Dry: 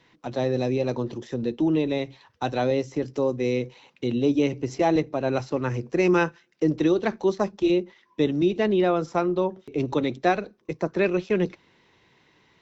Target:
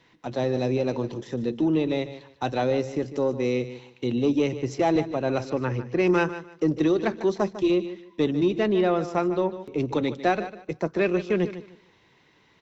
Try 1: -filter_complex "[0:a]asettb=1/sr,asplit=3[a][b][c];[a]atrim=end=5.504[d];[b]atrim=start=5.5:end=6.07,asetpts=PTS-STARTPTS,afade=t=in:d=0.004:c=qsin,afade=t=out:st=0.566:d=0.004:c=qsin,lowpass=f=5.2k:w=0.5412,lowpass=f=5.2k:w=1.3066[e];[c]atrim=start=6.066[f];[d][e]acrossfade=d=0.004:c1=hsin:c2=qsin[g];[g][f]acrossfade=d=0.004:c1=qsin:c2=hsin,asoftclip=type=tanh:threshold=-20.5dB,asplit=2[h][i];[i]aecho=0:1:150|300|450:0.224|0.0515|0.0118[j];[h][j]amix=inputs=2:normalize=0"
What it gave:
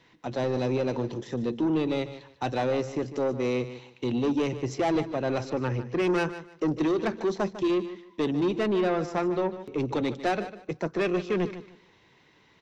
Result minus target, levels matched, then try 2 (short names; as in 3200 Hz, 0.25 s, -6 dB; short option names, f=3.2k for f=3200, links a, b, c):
soft clip: distortion +13 dB
-filter_complex "[0:a]asettb=1/sr,asplit=3[a][b][c];[a]atrim=end=5.504[d];[b]atrim=start=5.5:end=6.07,asetpts=PTS-STARTPTS,afade=t=in:d=0.004:c=qsin,afade=t=out:st=0.566:d=0.004:c=qsin,lowpass=f=5.2k:w=0.5412,lowpass=f=5.2k:w=1.3066[e];[c]atrim=start=6.066[f];[d][e]acrossfade=d=0.004:c1=hsin:c2=qsin[g];[g][f]acrossfade=d=0.004:c1=qsin:c2=hsin,asoftclip=type=tanh:threshold=-11dB,asplit=2[h][i];[i]aecho=0:1:150|300|450:0.224|0.0515|0.0118[j];[h][j]amix=inputs=2:normalize=0"